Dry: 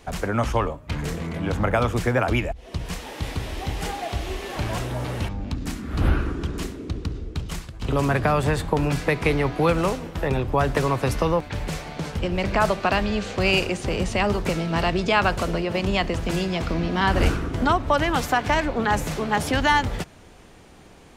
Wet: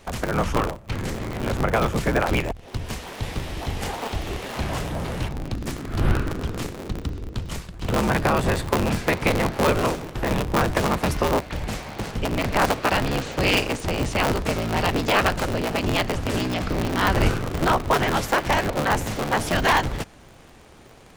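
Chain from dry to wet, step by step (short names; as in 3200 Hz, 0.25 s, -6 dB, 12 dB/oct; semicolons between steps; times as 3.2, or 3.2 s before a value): cycle switcher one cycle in 3, inverted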